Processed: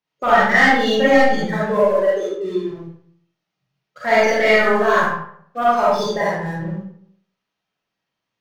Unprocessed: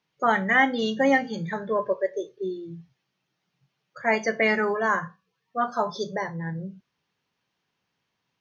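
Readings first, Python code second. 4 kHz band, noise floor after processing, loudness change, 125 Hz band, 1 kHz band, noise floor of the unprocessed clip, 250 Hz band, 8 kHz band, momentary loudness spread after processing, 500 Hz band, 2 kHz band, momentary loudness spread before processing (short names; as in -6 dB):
+10.5 dB, -81 dBFS, +8.5 dB, +7.0 dB, +8.5 dB, -79 dBFS, +6.0 dB, n/a, 15 LU, +10.0 dB, +7.5 dB, 15 LU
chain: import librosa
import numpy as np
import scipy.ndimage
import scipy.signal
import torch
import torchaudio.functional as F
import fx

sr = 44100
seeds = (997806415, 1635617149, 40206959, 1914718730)

p1 = fx.leveller(x, sr, passes=2)
p2 = p1 + fx.echo_single(p1, sr, ms=71, db=-12.0, dry=0)
p3 = fx.rev_freeverb(p2, sr, rt60_s=0.64, hf_ratio=0.65, predelay_ms=10, drr_db=-7.5)
y = p3 * librosa.db_to_amplitude(-6.0)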